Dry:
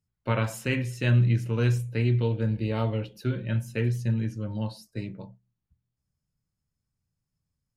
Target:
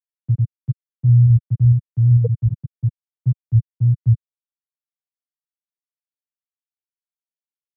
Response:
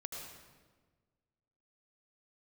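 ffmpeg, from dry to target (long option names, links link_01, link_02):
-filter_complex "[0:a]afwtdn=0.0398,afftfilt=real='re*gte(hypot(re,im),0.562)':imag='im*gte(hypot(re,im),0.562)':win_size=1024:overlap=0.75,lowshelf=frequency=190:gain=-8,acrossover=split=120[link_01][link_02];[link_02]acompressor=threshold=-44dB:ratio=4[link_03];[link_01][link_03]amix=inputs=2:normalize=0,alimiter=level_in=28dB:limit=-1dB:release=50:level=0:latency=1,volume=-6dB"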